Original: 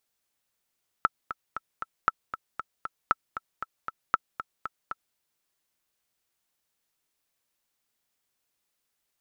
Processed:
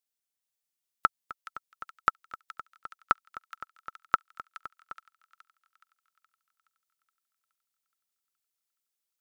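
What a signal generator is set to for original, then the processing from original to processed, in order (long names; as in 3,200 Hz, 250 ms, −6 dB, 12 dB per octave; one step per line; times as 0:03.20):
click track 233 BPM, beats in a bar 4, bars 4, 1,320 Hz, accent 12 dB −7.5 dBFS
high-shelf EQ 3,000 Hz +8 dB
delay with a high-pass on its return 421 ms, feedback 61%, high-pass 2,400 Hz, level −3.5 dB
expander for the loud parts 1.5 to 1, over −52 dBFS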